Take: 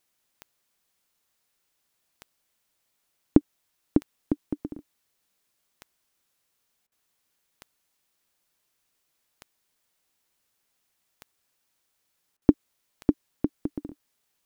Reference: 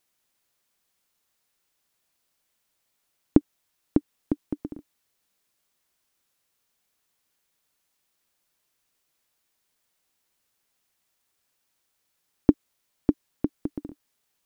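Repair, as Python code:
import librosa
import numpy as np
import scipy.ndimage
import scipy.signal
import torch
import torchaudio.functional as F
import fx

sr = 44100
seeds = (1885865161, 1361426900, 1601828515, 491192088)

y = fx.fix_declick_ar(x, sr, threshold=10.0)
y = fx.fix_interpolate(y, sr, at_s=(6.87, 12.37), length_ms=47.0)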